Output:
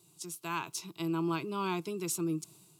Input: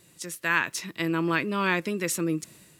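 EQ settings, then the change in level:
high-pass filter 53 Hz
phaser with its sweep stopped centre 360 Hz, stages 8
−4.5 dB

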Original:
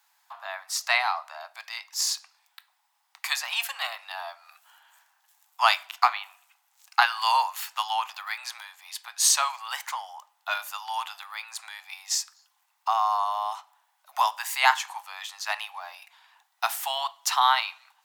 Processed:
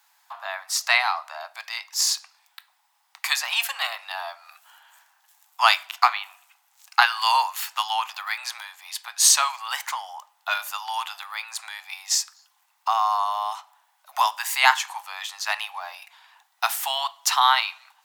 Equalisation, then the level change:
dynamic equaliser 570 Hz, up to −4 dB, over −36 dBFS, Q 0.75
+4.5 dB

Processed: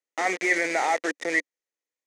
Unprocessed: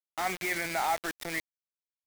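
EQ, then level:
loudspeaker in its box 260–8,900 Hz, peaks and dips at 290 Hz +6 dB, 500 Hz +7 dB, 2,400 Hz +4 dB, 6,400 Hz +8 dB
parametric band 420 Hz +8 dB 1.7 octaves
parametric band 1,900 Hz +12.5 dB 0.24 octaves
0.0 dB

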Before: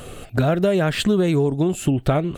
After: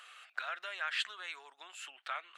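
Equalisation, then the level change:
high-pass filter 1,300 Hz 24 dB per octave
head-to-tape spacing loss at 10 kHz 20 dB
−3.0 dB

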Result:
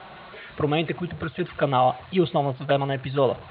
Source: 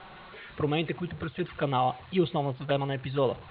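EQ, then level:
high-pass filter 51 Hz
parametric band 650 Hz +7.5 dB 0.23 octaves
dynamic equaliser 1,400 Hz, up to +3 dB, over −44 dBFS
+4.0 dB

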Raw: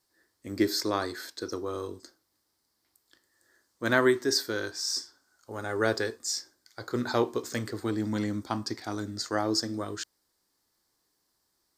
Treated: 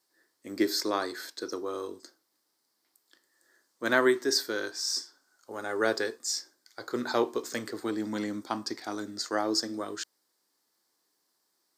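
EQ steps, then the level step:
high-pass filter 240 Hz 12 dB per octave
0.0 dB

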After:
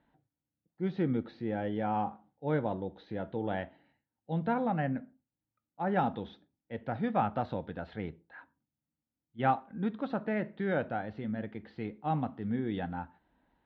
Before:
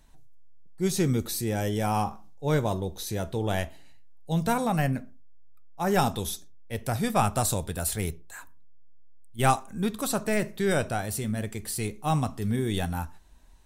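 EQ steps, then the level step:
high-frequency loss of the air 250 metres
loudspeaker in its box 370–3,500 Hz, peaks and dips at 400 Hz −10 dB, 640 Hz −6 dB, 1,100 Hz −9 dB, 2,500 Hz −6 dB
spectral tilt −3 dB per octave
0.0 dB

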